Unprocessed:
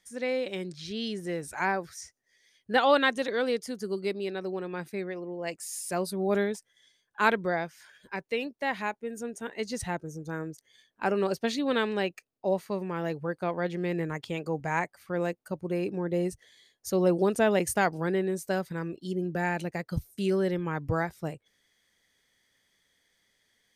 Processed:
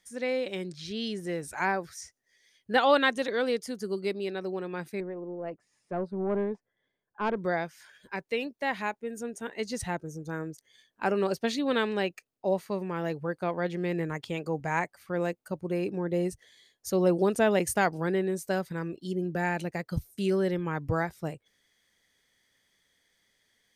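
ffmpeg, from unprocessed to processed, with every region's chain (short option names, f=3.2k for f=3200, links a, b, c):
-filter_complex "[0:a]asettb=1/sr,asplit=3[a][b][c];[a]atrim=end=5.004[d];[b]atrim=start=5:end=7.37,asetpts=PTS-STARTPTS,afade=t=in:d=0.004:c=qsin,afade=t=out:st=2.366:d=0.004:c=qsin,lowpass=1k,aeval=exprs='(tanh(11.2*val(0)+0.2)-tanh(0.2))/11.2':c=same[e];[c]atrim=start=7.366[f];[d][e]acrossfade=d=0.004:c1=hsin:c2=qsin[g];[g][f]acrossfade=d=0.004:c1=qsin:c2=hsin"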